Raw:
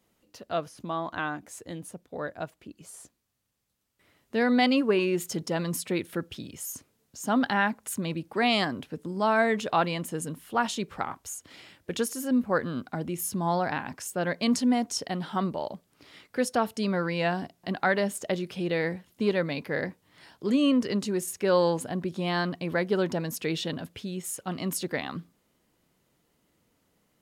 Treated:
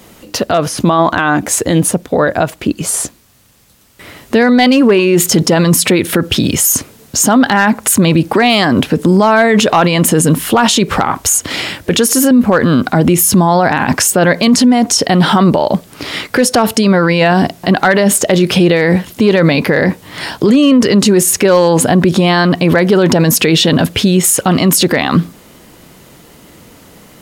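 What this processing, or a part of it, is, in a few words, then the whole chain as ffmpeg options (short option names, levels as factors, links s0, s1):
loud club master: -af "acompressor=threshold=0.0224:ratio=1.5,asoftclip=type=hard:threshold=0.0891,alimiter=level_in=37.6:limit=0.891:release=50:level=0:latency=1,volume=0.891"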